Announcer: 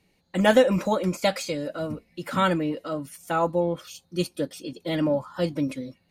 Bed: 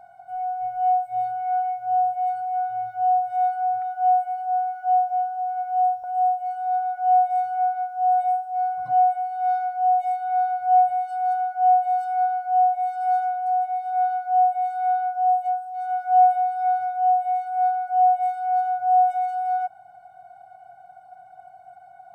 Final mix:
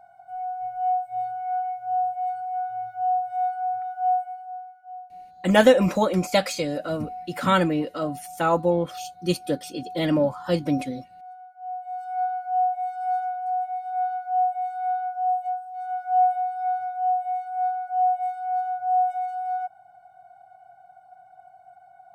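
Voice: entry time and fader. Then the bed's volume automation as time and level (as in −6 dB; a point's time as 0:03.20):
5.10 s, +2.5 dB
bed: 0:04.14 −3.5 dB
0:04.84 −20 dB
0:11.59 −20 dB
0:12.19 −4 dB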